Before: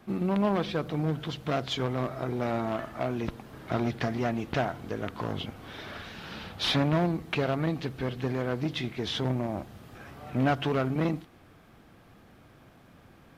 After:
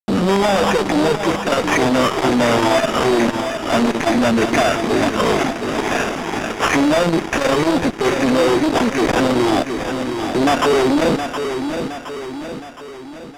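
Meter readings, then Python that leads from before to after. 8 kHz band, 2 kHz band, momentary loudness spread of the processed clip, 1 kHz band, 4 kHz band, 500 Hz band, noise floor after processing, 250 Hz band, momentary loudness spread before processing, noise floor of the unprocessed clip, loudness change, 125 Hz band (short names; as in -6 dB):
+22.5 dB, +16.5 dB, 9 LU, +16.0 dB, +12.0 dB, +15.5 dB, -33 dBFS, +13.5 dB, 14 LU, -56 dBFS, +13.5 dB, +4.5 dB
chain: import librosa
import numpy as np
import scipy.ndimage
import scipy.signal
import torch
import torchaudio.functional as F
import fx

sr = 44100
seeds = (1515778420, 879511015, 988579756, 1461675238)

p1 = fx.spec_ripple(x, sr, per_octave=0.76, drift_hz=-2.2, depth_db=18)
p2 = scipy.signal.sosfilt(scipy.signal.butter(4, 220.0, 'highpass', fs=sr, output='sos'), p1)
p3 = fx.env_lowpass(p2, sr, base_hz=670.0, full_db=-23.0)
p4 = fx.rider(p3, sr, range_db=4, speed_s=2.0)
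p5 = p3 + (p4 * 10.0 ** (2.0 / 20.0))
p6 = fx.fuzz(p5, sr, gain_db=30.0, gate_db=-35.0)
p7 = fx.sample_hold(p6, sr, seeds[0], rate_hz=4200.0, jitter_pct=0)
p8 = fx.air_absorb(p7, sr, metres=53.0)
p9 = p8 + fx.echo_feedback(p8, sr, ms=717, feedback_pct=50, wet_db=-9.0, dry=0)
p10 = fx.transformer_sat(p9, sr, knee_hz=330.0)
y = p10 * 10.0 ** (2.0 / 20.0)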